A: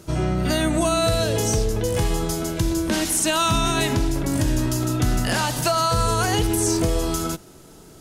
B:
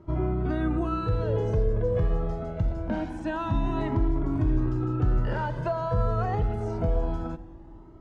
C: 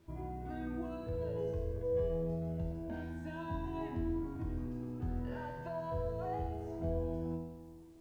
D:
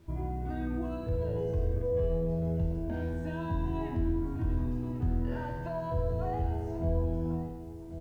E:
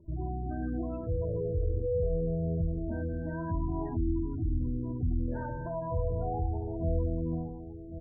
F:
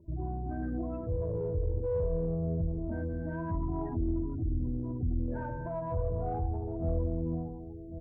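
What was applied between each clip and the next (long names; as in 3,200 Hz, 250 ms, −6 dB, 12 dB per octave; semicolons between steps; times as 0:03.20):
low-pass filter 1,100 Hz 12 dB per octave; on a send at −16 dB: convolution reverb RT60 3.6 s, pre-delay 5 ms; on the sum: flanger whose copies keep moving one way rising 0.25 Hz
notch filter 1,300 Hz, Q 6.3; tuned comb filter 82 Hz, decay 1.1 s, harmonics all, mix 90%; bit reduction 12 bits
single-tap delay 1,093 ms −13.5 dB; in parallel at −0.5 dB: brickwall limiter −31.5 dBFS, peak gain reduction 6.5 dB; on the sum: low-shelf EQ 130 Hz +8 dB; level −1.5 dB
gate on every frequency bin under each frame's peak −20 dB strong
one-sided soft clipper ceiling −21 dBFS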